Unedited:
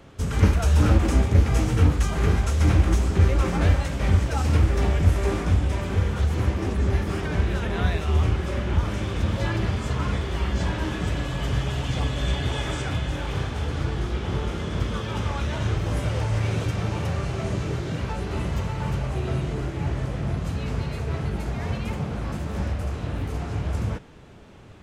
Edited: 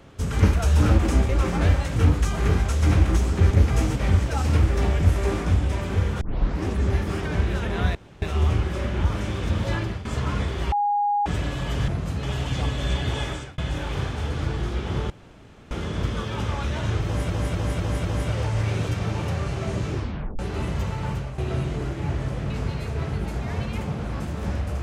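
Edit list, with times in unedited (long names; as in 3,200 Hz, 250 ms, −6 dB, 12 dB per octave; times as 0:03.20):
0:01.29–0:01.74: swap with 0:03.29–0:03.96
0:06.21: tape start 0.43 s
0:07.95: splice in room tone 0.27 s
0:09.49–0:09.78: fade out, to −14 dB
0:10.45–0:10.99: beep over 821 Hz −19 dBFS
0:12.62–0:12.96: fade out
0:14.48: splice in room tone 0.61 s
0:15.82–0:16.07: repeat, 5 plays
0:17.68: tape stop 0.48 s
0:18.82–0:19.15: fade out, to −9 dB
0:20.27–0:20.62: move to 0:11.61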